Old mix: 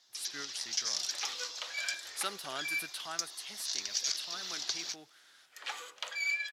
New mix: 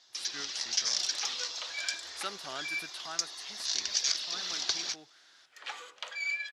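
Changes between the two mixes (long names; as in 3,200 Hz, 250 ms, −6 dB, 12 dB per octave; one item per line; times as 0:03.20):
first sound +6.5 dB
master: add high-frequency loss of the air 53 metres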